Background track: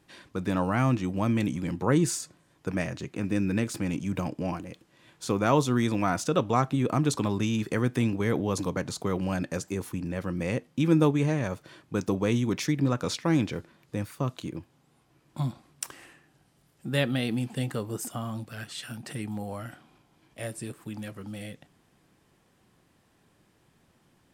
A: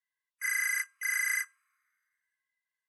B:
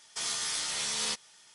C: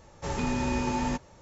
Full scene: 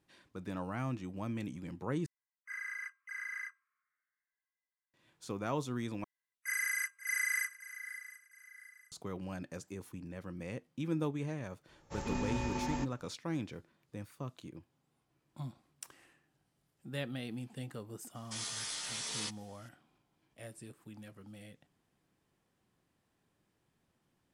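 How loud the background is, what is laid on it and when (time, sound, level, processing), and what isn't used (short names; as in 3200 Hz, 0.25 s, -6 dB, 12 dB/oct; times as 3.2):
background track -13 dB
2.06 replace with A -6.5 dB + band-pass 970 Hz, Q 0.93
6.04 replace with A -4.5 dB + swung echo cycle 0.71 s, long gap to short 3:1, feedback 33%, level -14 dB
11.68 add C -7 dB + upward expander, over -38 dBFS
18.15 add B -7.5 dB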